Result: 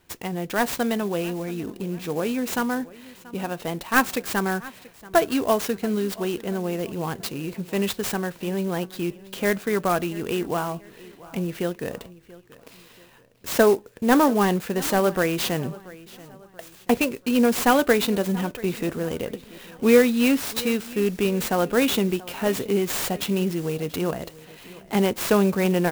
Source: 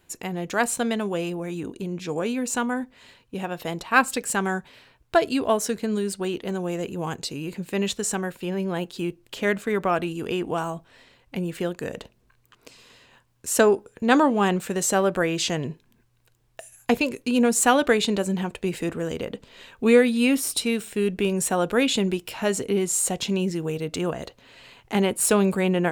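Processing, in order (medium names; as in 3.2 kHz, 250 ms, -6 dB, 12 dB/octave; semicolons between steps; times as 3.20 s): CVSD coder 64 kbps; feedback delay 683 ms, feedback 40%, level -20 dB; sampling jitter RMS 0.032 ms; trim +1 dB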